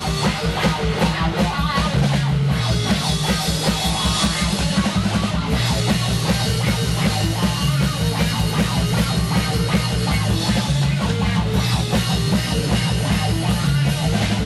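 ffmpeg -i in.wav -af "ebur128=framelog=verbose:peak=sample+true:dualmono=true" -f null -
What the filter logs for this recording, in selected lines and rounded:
Integrated loudness:
  I:         -16.2 LUFS
  Threshold: -26.2 LUFS
Loudness range:
  LRA:         0.4 LU
  Threshold: -36.2 LUFS
  LRA low:   -16.3 LUFS
  LRA high:  -15.9 LUFS
Sample peak:
  Peak:       -8.3 dBFS
True peak:
  Peak:       -8.2 dBFS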